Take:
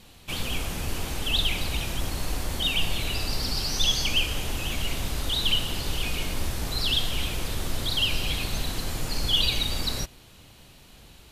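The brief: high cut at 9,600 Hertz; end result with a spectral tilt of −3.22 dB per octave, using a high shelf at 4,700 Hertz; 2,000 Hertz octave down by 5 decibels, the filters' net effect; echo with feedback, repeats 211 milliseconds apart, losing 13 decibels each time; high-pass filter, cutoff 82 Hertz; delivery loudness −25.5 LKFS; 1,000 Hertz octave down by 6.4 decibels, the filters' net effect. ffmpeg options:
ffmpeg -i in.wav -af "highpass=82,lowpass=9600,equalizer=frequency=1000:width_type=o:gain=-7,equalizer=frequency=2000:width_type=o:gain=-7.5,highshelf=frequency=4700:gain=4.5,aecho=1:1:211|422|633:0.224|0.0493|0.0108,volume=3dB" out.wav

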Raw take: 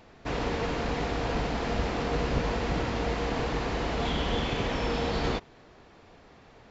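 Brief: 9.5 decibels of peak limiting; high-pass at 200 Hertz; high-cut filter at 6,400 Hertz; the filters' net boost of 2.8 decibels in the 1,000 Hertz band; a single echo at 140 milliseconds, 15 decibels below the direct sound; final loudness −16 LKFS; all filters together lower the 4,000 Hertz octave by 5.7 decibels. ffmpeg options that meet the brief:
ffmpeg -i in.wav -af "highpass=200,lowpass=6400,equalizer=frequency=1000:width_type=o:gain=4,equalizer=frequency=4000:width_type=o:gain=-7.5,alimiter=level_in=2dB:limit=-24dB:level=0:latency=1,volume=-2dB,aecho=1:1:140:0.178,volume=18.5dB" out.wav

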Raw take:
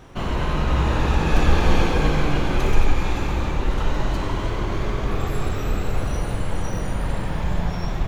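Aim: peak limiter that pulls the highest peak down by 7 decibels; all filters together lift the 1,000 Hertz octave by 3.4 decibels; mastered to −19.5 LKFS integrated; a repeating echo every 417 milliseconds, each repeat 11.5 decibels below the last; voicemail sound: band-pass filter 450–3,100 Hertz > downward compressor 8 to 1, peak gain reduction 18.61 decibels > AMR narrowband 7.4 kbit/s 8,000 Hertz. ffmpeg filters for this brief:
ffmpeg -i in.wav -af "equalizer=frequency=1000:width_type=o:gain=4.5,alimiter=limit=-10.5dB:level=0:latency=1,highpass=450,lowpass=3100,aecho=1:1:417|834|1251:0.266|0.0718|0.0194,acompressor=threshold=-41dB:ratio=8,volume=26.5dB" -ar 8000 -c:a libopencore_amrnb -b:a 7400 out.amr

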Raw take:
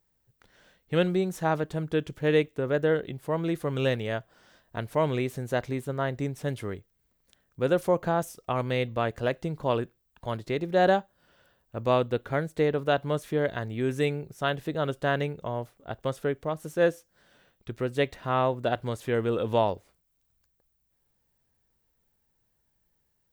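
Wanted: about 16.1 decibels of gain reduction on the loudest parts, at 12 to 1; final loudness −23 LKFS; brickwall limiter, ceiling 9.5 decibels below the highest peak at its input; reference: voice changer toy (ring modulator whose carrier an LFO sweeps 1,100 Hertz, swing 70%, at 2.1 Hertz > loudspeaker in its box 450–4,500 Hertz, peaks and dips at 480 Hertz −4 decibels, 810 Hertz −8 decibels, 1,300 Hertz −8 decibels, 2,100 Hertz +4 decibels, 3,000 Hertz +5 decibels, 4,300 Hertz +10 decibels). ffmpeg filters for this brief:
ffmpeg -i in.wav -af "acompressor=threshold=-34dB:ratio=12,alimiter=level_in=8dB:limit=-24dB:level=0:latency=1,volume=-8dB,aeval=exprs='val(0)*sin(2*PI*1100*n/s+1100*0.7/2.1*sin(2*PI*2.1*n/s))':channel_layout=same,highpass=450,equalizer=frequency=480:width_type=q:width=4:gain=-4,equalizer=frequency=810:width_type=q:width=4:gain=-8,equalizer=frequency=1300:width_type=q:width=4:gain=-8,equalizer=frequency=2100:width_type=q:width=4:gain=4,equalizer=frequency=3000:width_type=q:width=4:gain=5,equalizer=frequency=4300:width_type=q:width=4:gain=10,lowpass=frequency=4500:width=0.5412,lowpass=frequency=4500:width=1.3066,volume=22dB" out.wav

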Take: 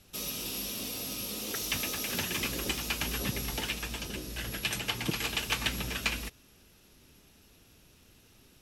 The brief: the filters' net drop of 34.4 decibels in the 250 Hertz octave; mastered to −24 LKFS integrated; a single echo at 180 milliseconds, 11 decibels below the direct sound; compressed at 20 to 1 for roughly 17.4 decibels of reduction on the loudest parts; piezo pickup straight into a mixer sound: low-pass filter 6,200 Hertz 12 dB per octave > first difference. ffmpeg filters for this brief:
ffmpeg -i in.wav -af "equalizer=frequency=250:width_type=o:gain=-7.5,acompressor=threshold=-44dB:ratio=20,lowpass=6200,aderivative,aecho=1:1:180:0.282,volume=30dB" out.wav

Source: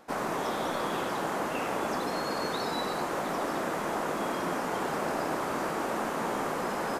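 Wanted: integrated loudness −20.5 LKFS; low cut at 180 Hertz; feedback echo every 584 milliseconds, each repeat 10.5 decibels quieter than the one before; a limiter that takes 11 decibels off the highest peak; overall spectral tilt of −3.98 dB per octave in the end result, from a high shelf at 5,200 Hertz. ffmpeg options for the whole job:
ffmpeg -i in.wav -af "highpass=180,highshelf=frequency=5200:gain=-5,alimiter=level_in=6dB:limit=-24dB:level=0:latency=1,volume=-6dB,aecho=1:1:584|1168|1752:0.299|0.0896|0.0269,volume=17.5dB" out.wav

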